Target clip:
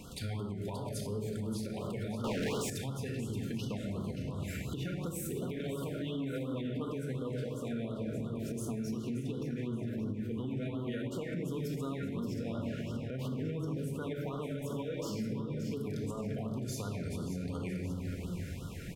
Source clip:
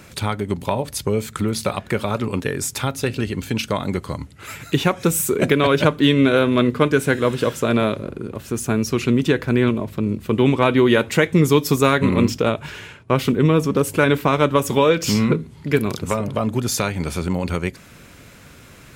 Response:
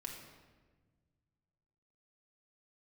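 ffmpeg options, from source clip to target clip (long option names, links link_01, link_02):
-filter_complex "[0:a]lowshelf=frequency=270:gain=5.5[link_01];[1:a]atrim=start_sample=2205[link_02];[link_01][link_02]afir=irnorm=-1:irlink=0,acompressor=threshold=-31dB:ratio=2.5,aecho=1:1:576|1152|1728|2304:0.316|0.104|0.0344|0.0114,asettb=1/sr,asplit=3[link_03][link_04][link_05];[link_03]atrim=end=2.244[link_06];[link_04]atrim=start=2.24:end=2.7,asetpts=PTS-STARTPTS,afade=type=in:duration=0.004:curve=qsin,afade=type=out:start_time=0.456:duration=0.004:curve=qsin,asplit=2[link_07][link_08];[link_08]highpass=frequency=720:poles=1,volume=38dB,asoftclip=type=tanh:threshold=-18.5dB[link_09];[link_07][link_09]amix=inputs=2:normalize=0,lowpass=frequency=3500:poles=1,volume=-6dB[link_10];[link_05]atrim=start=2.696[link_11];[link_06][link_10]acrossfade=duration=0.004:curve1=hsin:curve2=qsin[link_12];[link_12][link_11]acrossfade=duration=0.004:curve1=qsin:curve2=hsin,alimiter=level_in=2.5dB:limit=-24dB:level=0:latency=1:release=223,volume=-2.5dB,afftfilt=real='re*(1-between(b*sr/1024,920*pow(2100/920,0.5+0.5*sin(2*PI*2.8*pts/sr))/1.41,920*pow(2100/920,0.5+0.5*sin(2*PI*2.8*pts/sr))*1.41))':imag='im*(1-between(b*sr/1024,920*pow(2100/920,0.5+0.5*sin(2*PI*2.8*pts/sr))/1.41,920*pow(2100/920,0.5+0.5*sin(2*PI*2.8*pts/sr))*1.41))':win_size=1024:overlap=0.75,volume=-2dB"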